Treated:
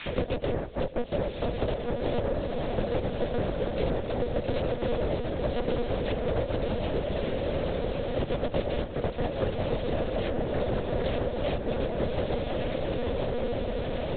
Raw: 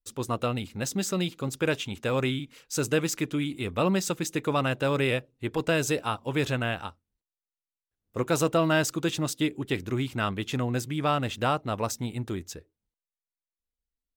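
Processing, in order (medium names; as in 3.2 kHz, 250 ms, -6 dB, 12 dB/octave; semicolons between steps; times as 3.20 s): low-pass 1.2 kHz 12 dB/octave; bass shelf 160 Hz +6.5 dB; in parallel at 0 dB: peak limiter -22.5 dBFS, peak gain reduction 11 dB; on the sum: added noise violet -42 dBFS; noise-vocoded speech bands 2; static phaser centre 420 Hz, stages 4; echo that smears into a reverb 1213 ms, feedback 45%, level -3 dB; on a send at -20.5 dB: reverberation RT60 1.3 s, pre-delay 3 ms; on the sum: monotone LPC vocoder at 8 kHz 240 Hz; three bands compressed up and down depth 100%; trim -4 dB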